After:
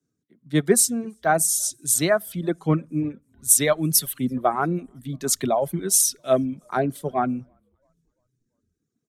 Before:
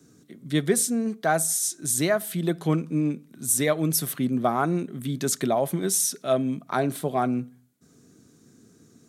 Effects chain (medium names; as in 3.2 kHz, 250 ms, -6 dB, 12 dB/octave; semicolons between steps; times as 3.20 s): frequency-shifting echo 338 ms, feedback 62%, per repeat -41 Hz, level -23.5 dB; reverb removal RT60 1.1 s; three bands expanded up and down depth 70%; trim +1.5 dB